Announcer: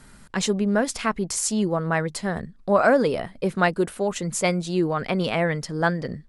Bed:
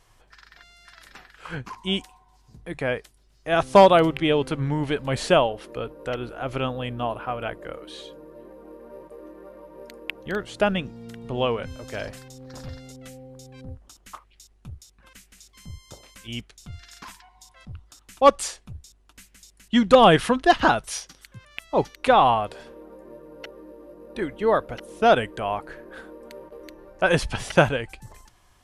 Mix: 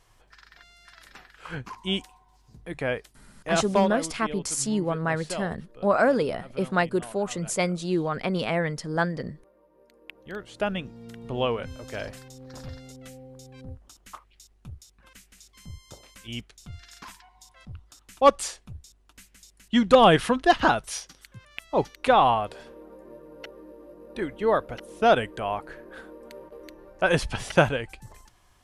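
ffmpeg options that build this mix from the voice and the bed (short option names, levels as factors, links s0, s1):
-filter_complex "[0:a]adelay=3150,volume=0.708[s0];[1:a]volume=4.22,afade=t=out:st=3.44:d=0.49:silence=0.188365,afade=t=in:st=9.88:d=1.38:silence=0.188365[s1];[s0][s1]amix=inputs=2:normalize=0"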